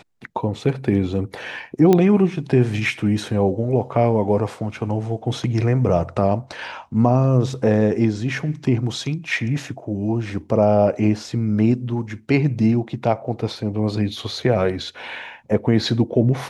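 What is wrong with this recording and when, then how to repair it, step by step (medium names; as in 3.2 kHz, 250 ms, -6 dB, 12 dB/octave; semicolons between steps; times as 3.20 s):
1.93 s: pop -5 dBFS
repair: de-click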